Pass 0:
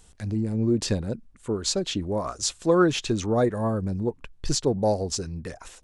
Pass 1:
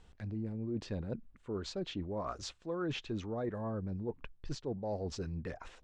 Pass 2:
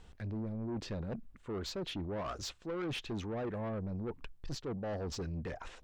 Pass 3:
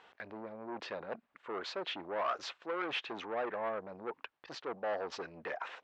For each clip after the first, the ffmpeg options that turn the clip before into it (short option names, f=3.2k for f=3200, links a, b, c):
-af "lowpass=3.1k,areverse,acompressor=threshold=-31dB:ratio=6,areverse,volume=-4dB"
-af "asoftclip=type=tanh:threshold=-38dB,volume=4dB"
-af "highpass=690,lowpass=2.6k,volume=8.5dB"